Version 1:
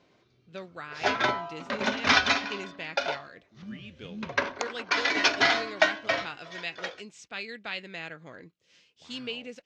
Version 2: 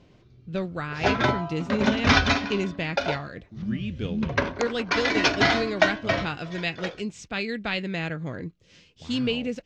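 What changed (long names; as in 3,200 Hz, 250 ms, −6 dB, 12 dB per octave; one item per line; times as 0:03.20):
speech +5.5 dB
master: remove high-pass filter 700 Hz 6 dB per octave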